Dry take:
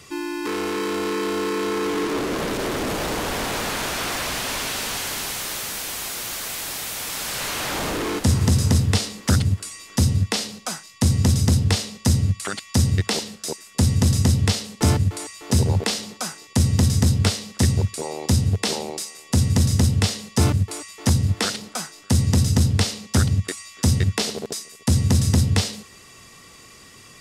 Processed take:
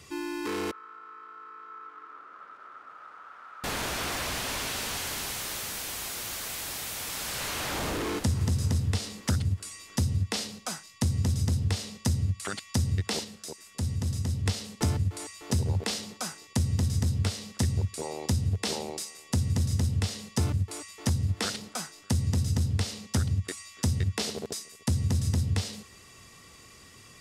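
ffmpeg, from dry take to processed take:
-filter_complex "[0:a]asettb=1/sr,asplit=3[a][b][c];[a]atrim=end=0.714[d];[b]atrim=start=0.71:end=3.64,asetpts=PTS-STARTPTS,afade=t=in:d=0.004:c=qsin,afade=t=out:st=2.926:d=0.004:c=qsin,bandpass=f=1.3k:t=q:w=13[e];[c]atrim=start=3.636[f];[d][e]acrossfade=d=0.004:c1=hsin:c2=qsin[g];[g][f]acrossfade=d=0.004:c1=qsin:c2=hsin,asettb=1/sr,asplit=3[h][i][j];[h]atrim=end=13.244[k];[i]atrim=start=13.24:end=14.46,asetpts=PTS-STARTPTS,afade=t=in:d=0.004:c=qsin,afade=t=out:st=1.216:d=0.004:c=qsin,acompressor=threshold=-39dB:ratio=1.5:attack=3.2:release=140:knee=1:detection=peak[l];[j]atrim=start=14.456[m];[k][l]acrossfade=d=0.004:c1=hsin:c2=qsin[n];[n][m]acrossfade=d=0.004:c1=qsin:c2=hsin,equalizer=f=75:t=o:w=1.2:g=5.5,acompressor=threshold=-17dB:ratio=6,volume=-6dB"

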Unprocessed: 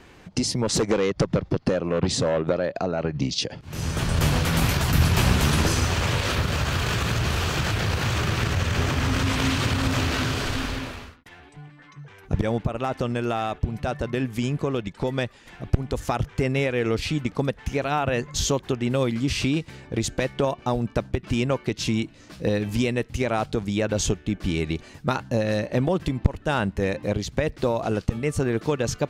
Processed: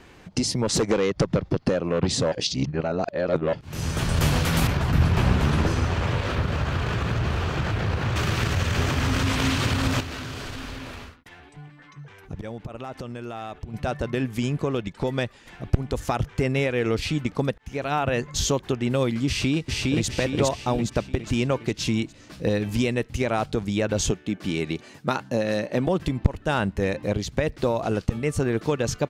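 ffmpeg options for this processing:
-filter_complex "[0:a]asettb=1/sr,asplit=3[a][b][c];[a]atrim=end=4.674[d];[b]atrim=start=4.67:end=8.16,asetpts=PTS-STARTPTS,afade=t=in:d=0.004:c=qsin,afade=t=out:st=3.486:d=0.004:c=qsin,lowpass=f=1.6k:p=1[e];[c]atrim=start=8.156[f];[d][e]acrossfade=d=0.004:c1=hsin:c2=qsin[g];[g][f]acrossfade=d=0.004:c1=qsin:c2=hsin,asettb=1/sr,asplit=3[h][i][j];[h]atrim=end=10.004[k];[i]atrim=start=10:end=13.74,asetpts=PTS-STARTPTS,afade=t=in:d=0.004:c=qsin,afade=t=out:st=3.736:d=0.004:c=qsin,acompressor=threshold=-33dB:ratio=3:attack=3.2:release=140:knee=1:detection=peak[l];[j]atrim=start=13.736[m];[k][l]acrossfade=d=0.004:c1=hsin:c2=qsin[n];[n][m]acrossfade=d=0.004:c1=qsin:c2=hsin,asplit=2[o][p];[p]afade=t=in:st=19.27:d=0.01,afade=t=out:st=20.07:d=0.01,aecho=0:1:410|820|1230|1640|2050|2460|2870:0.891251|0.445625|0.222813|0.111406|0.0557032|0.0278516|0.0139258[q];[o][q]amix=inputs=2:normalize=0,asettb=1/sr,asplit=3[r][s][t];[r]atrim=end=24.114[u];[s]atrim=start=24.11:end=25.87,asetpts=PTS-STARTPTS,afade=t=in:d=0.004:c=qsin,afade=t=out:st=1.756:d=0.004:c=qsin,highpass=150[v];[t]atrim=start=25.866[w];[u][v]acrossfade=d=0.004:c1=hsin:c2=qsin[x];[x][w]acrossfade=d=0.004:c1=qsin:c2=hsin,asplit=4[y][z][aa][ab];[y]atrim=end=2.322[ac];[z]atrim=start=2.318:end=3.532,asetpts=PTS-STARTPTS,areverse[ad];[aa]atrim=start=3.528:end=17.58,asetpts=PTS-STARTPTS,afade=t=out:st=14.048:d=0.004:c=hsin[ae];[ab]atrim=start=17.58,asetpts=PTS-STARTPTS,afade=t=in:d=0.46:c=qsin[af];[ac][ad]acrossfade=d=0.004:c1=hsin:c2=hsin[ag];[ae][af]concat=n=2:v=0:a=1[ah];[ag][ah]acrossfade=d=0.004:c1=hsin:c2=hsin"

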